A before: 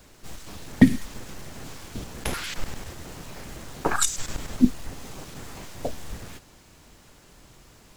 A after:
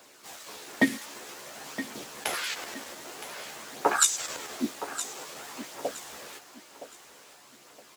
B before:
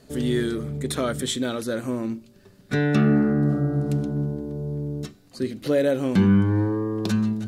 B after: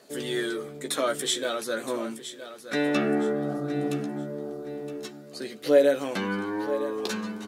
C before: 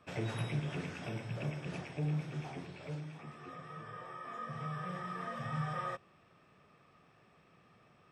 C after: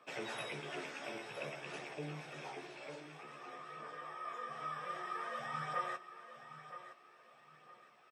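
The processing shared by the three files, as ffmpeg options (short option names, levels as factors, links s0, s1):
-filter_complex "[0:a]highpass=440,aphaser=in_gain=1:out_gain=1:delay=3.7:decay=0.31:speed=0.52:type=triangular,asplit=2[s0][s1];[s1]adelay=14,volume=0.501[s2];[s0][s2]amix=inputs=2:normalize=0,aecho=1:1:967|1934|2901:0.237|0.0711|0.0213"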